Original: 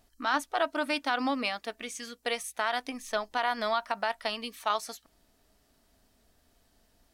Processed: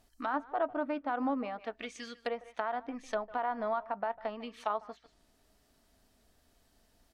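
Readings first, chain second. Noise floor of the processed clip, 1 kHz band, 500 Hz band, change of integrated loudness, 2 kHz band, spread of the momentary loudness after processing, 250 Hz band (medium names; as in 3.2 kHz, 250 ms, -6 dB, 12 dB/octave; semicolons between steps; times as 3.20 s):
-70 dBFS, -4.0 dB, -2.0 dB, -4.5 dB, -10.0 dB, 8 LU, -1.5 dB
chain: speakerphone echo 150 ms, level -17 dB; low-pass that closes with the level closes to 1 kHz, closed at -29.5 dBFS; trim -1.5 dB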